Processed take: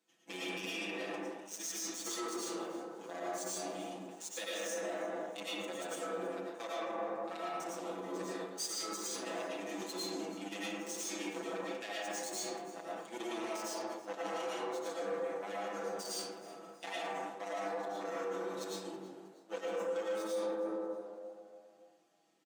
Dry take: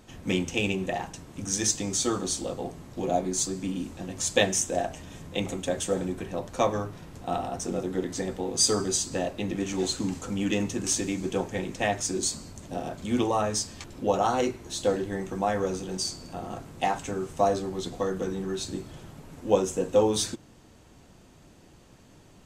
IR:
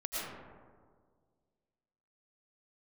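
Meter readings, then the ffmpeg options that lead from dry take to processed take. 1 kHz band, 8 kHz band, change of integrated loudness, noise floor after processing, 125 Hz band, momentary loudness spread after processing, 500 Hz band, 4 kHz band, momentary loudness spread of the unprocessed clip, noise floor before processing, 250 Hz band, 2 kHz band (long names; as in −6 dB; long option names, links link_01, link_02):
−10.0 dB, −13.0 dB, −11.5 dB, −59 dBFS, −23.0 dB, 7 LU, −10.0 dB, −10.5 dB, 12 LU, −54 dBFS, −13.5 dB, −7.5 dB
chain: -filter_complex "[0:a]acrossover=split=480|1400[link_01][link_02][link_03];[link_02]flanger=delay=19:depth=4.6:speed=0.83[link_04];[link_03]volume=19dB,asoftclip=hard,volume=-19dB[link_05];[link_01][link_04][link_05]amix=inputs=3:normalize=0,aeval=exprs='0.316*(cos(1*acos(clip(val(0)/0.316,-1,1)))-cos(1*PI/2))+0.00447*(cos(3*acos(clip(val(0)/0.316,-1,1)))-cos(3*PI/2))+0.0398*(cos(7*acos(clip(val(0)/0.316,-1,1)))-cos(7*PI/2))':channel_layout=same,equalizer=frequency=360:width=0.33:gain=-4.5[link_06];[1:a]atrim=start_sample=2205[link_07];[link_06][link_07]afir=irnorm=-1:irlink=0,areverse,acompressor=threshold=-38dB:ratio=6,areverse,highpass=frequency=260:width=0.5412,highpass=frequency=260:width=1.3066,alimiter=level_in=11.5dB:limit=-24dB:level=0:latency=1:release=33,volume=-11.5dB,aecho=1:1:6:0.97,asplit=4[link_08][link_09][link_10][link_11];[link_09]adelay=319,afreqshift=97,volume=-20dB[link_12];[link_10]adelay=638,afreqshift=194,volume=-26.7dB[link_13];[link_11]adelay=957,afreqshift=291,volume=-33.5dB[link_14];[link_08][link_12][link_13][link_14]amix=inputs=4:normalize=0,volume=2dB"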